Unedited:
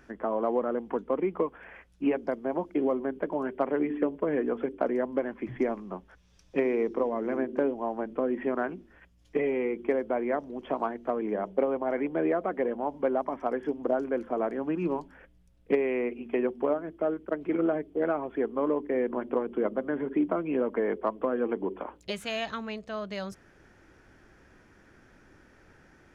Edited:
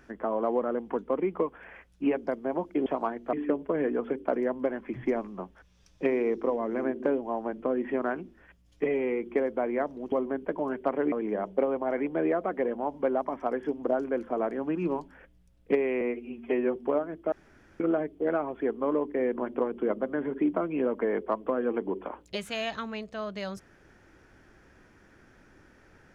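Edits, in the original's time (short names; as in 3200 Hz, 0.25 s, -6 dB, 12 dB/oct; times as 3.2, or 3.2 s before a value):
2.86–3.86 swap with 10.65–11.12
16.01–16.51 stretch 1.5×
17.07–17.55 room tone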